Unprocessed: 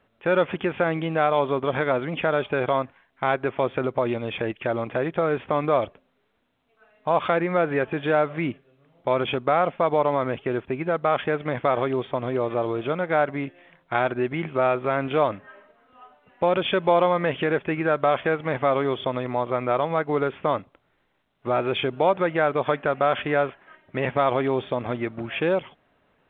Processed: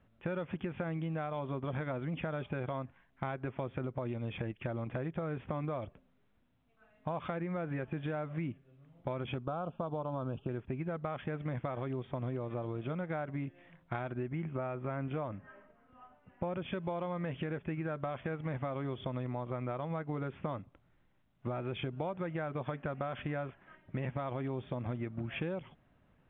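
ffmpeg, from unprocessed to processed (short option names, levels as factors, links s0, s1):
-filter_complex "[0:a]asettb=1/sr,asplit=3[s0][s1][s2];[s0]atrim=end=9.454[s3];[s1]atrim=start=9.45:end=10.49,asetpts=PTS-STARTPTS,afade=t=in:d=0.004:c=qsin,afade=t=out:st=1.036:d=0.004:c=qsin,asuperstop=centerf=2000:order=4:qfactor=1.6[s4];[s2]atrim=start=10.486[s5];[s3][s4]acrossfade=d=0.004:c1=hsin:c2=qsin[s6];[s6][s5]acrossfade=d=0.004:c1=qsin:c2=hsin,asettb=1/sr,asplit=3[s7][s8][s9];[s7]atrim=end=14.234[s10];[s8]atrim=start=14.23:end=16.72,asetpts=PTS-STARTPTS,afade=t=in:d=0.004:c=qsin,afade=t=out:st=2.486:d=0.004:c=qsin,lowpass=2700[s11];[s9]atrim=start=16.716[s12];[s10][s11]acrossfade=d=0.004:c1=hsin:c2=qsin[s13];[s13][s12]acrossfade=d=0.004:c1=qsin:c2=hsin,bass=f=250:g=13,treble=f=4000:g=-6,bandreject=f=430:w=12,acompressor=threshold=0.0501:ratio=6,volume=0.398"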